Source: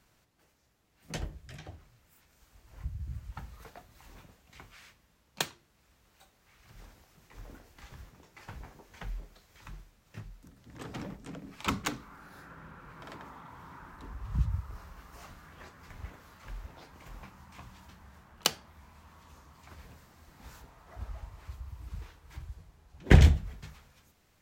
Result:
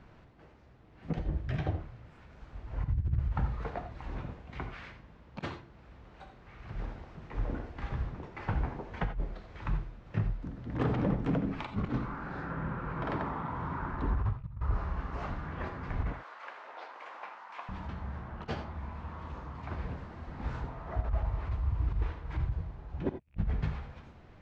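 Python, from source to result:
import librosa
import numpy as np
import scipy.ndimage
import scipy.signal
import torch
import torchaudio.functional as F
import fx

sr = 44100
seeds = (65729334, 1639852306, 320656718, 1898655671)

y = fx.rattle_buzz(x, sr, strikes_db=-24.0, level_db=-12.0)
y = fx.bessel_highpass(y, sr, hz=770.0, order=4, at=(16.13, 17.69))
y = fx.over_compress(y, sr, threshold_db=-41.0, ratio=-0.5)
y = fx.spacing_loss(y, sr, db_at_10k=40)
y = fx.rev_gated(y, sr, seeds[0], gate_ms=110, shape='rising', drr_db=8.5)
y = y * 10.0 ** (8.0 / 20.0)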